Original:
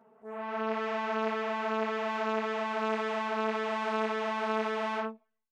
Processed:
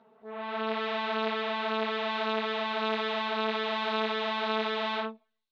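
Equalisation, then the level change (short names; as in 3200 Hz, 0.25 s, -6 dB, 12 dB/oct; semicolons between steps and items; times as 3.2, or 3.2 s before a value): synth low-pass 3800 Hz, resonance Q 5.5; 0.0 dB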